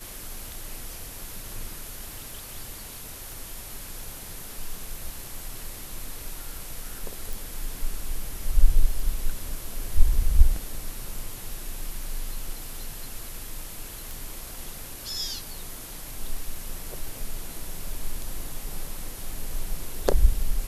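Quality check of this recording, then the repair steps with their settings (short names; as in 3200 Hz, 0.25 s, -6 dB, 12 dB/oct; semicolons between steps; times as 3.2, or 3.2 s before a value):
3.32 pop
7.33 pop
14.11 pop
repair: de-click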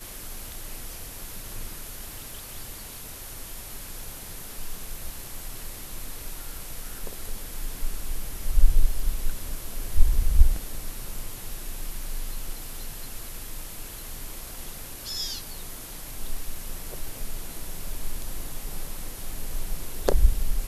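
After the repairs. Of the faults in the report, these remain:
none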